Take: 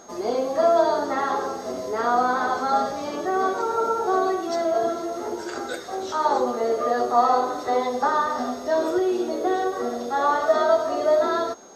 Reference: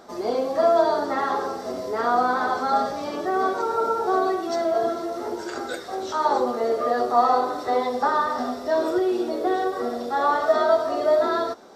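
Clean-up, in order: band-stop 6.5 kHz, Q 30

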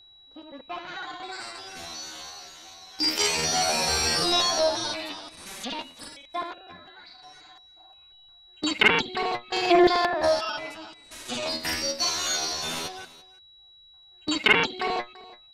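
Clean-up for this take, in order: band-stop 3.9 kHz, Q 30; inverse comb 337 ms -19.5 dB

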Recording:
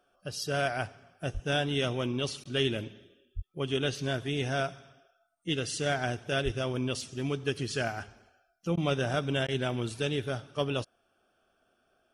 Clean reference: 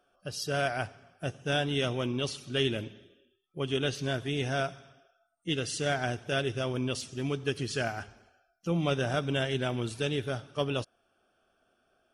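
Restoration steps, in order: 1.33–1.45 s: high-pass 140 Hz 24 dB/octave; 3.35–3.47 s: high-pass 140 Hz 24 dB/octave; 6.44–6.56 s: high-pass 140 Hz 24 dB/octave; interpolate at 2.44/8.76/9.47 s, 12 ms

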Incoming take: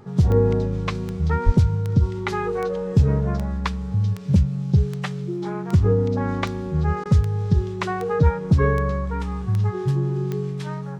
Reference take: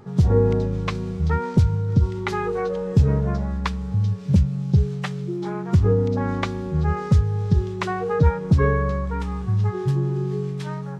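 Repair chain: de-click; 1.45–1.57 s: high-pass 140 Hz 24 dB/octave; interpolate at 7.04 s, 14 ms

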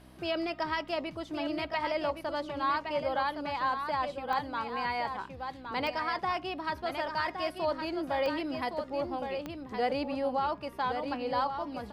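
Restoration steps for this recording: de-click; de-hum 63.6 Hz, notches 5; inverse comb 1115 ms -7 dB

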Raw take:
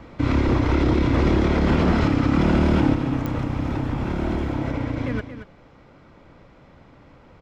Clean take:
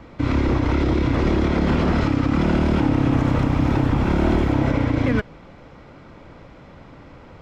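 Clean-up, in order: de-click; inverse comb 228 ms -11 dB; trim 0 dB, from 2.94 s +6.5 dB

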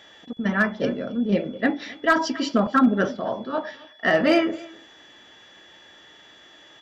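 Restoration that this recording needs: clip repair -10 dBFS; band-stop 3.4 kHz, Q 30; inverse comb 267 ms -22 dB

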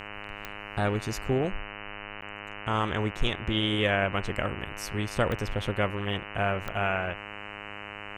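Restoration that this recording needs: de-click; de-hum 102.9 Hz, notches 29; interpolate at 2.21 s, 9.8 ms

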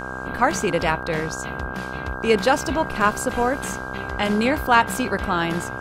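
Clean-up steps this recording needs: de-hum 64.4 Hz, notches 23; band-stop 1.6 kHz, Q 30

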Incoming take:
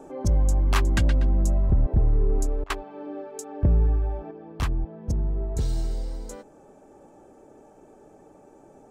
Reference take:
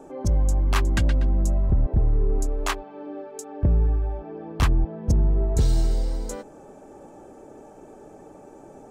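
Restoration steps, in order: interpolate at 2.64 s, 59 ms; gain correction +6 dB, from 4.31 s

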